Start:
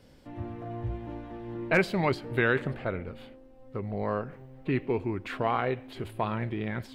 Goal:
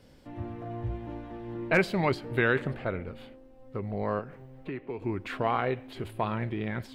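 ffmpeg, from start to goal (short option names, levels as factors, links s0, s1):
-filter_complex "[0:a]asettb=1/sr,asplit=3[s0][s1][s2];[s0]atrim=end=4.194[s3];[s1]atrim=start=4.19:end=5.02,asetpts=PTS-STARTPTS,afade=t=in:d=0.004:c=qsin,afade=t=out:st=0.826:d=0.004:c=qsin,acrossover=split=360|1900[s4][s5][s6];[s4]acompressor=threshold=0.00794:ratio=4[s7];[s5]acompressor=threshold=0.0126:ratio=4[s8];[s6]acompressor=threshold=0.00178:ratio=4[s9];[s7][s8][s9]amix=inputs=3:normalize=0[s10];[s2]atrim=start=5.016[s11];[s3][s10]acrossfade=d=0.004:c1=hsin:c2=qsin[s12];[s12][s11]acrossfade=d=0.004:c1=qsin:c2=hsin"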